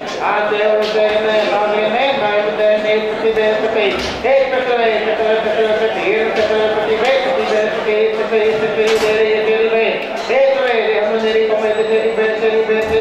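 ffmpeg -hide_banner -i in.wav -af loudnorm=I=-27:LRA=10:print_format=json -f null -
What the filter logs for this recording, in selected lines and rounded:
"input_i" : "-14.6",
"input_tp" : "-1.8",
"input_lra" : "0.6",
"input_thresh" : "-24.6",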